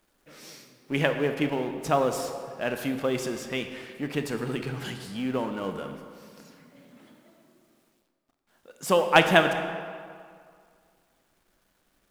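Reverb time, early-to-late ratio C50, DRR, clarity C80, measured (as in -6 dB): 2.1 s, 7.5 dB, 6.5 dB, 8.5 dB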